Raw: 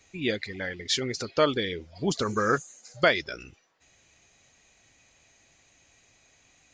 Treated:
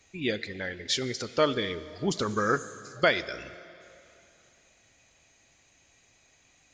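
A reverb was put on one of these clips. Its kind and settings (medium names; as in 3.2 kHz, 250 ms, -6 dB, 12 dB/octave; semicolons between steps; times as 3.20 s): plate-style reverb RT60 2.9 s, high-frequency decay 0.9×, DRR 14 dB; trim -1.5 dB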